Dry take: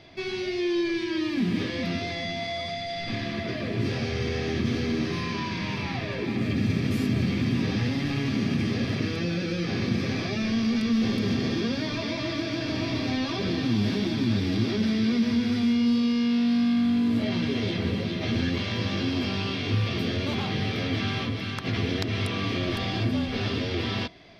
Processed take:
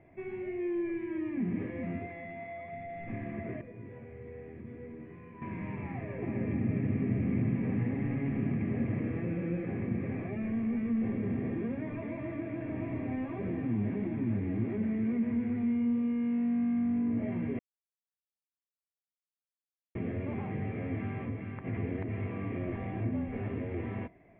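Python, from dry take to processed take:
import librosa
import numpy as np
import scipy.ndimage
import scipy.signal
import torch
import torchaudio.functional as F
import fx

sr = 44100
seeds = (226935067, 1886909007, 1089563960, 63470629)

y = fx.low_shelf(x, sr, hz=330.0, db=-7.5, at=(2.06, 2.73))
y = fx.comb_fb(y, sr, f0_hz=490.0, decay_s=0.17, harmonics='all', damping=0.0, mix_pct=80, at=(3.61, 5.42))
y = fx.echo_single(y, sr, ms=255, db=-3.5, at=(6.21, 9.69), fade=0.02)
y = fx.edit(y, sr, fx.silence(start_s=17.59, length_s=2.36), tone=tone)
y = scipy.signal.sosfilt(scipy.signal.butter(8, 2200.0, 'lowpass', fs=sr, output='sos'), y)
y = fx.peak_eq(y, sr, hz=1400.0, db=-10.0, octaves=0.79)
y = F.gain(torch.from_numpy(y), -6.5).numpy()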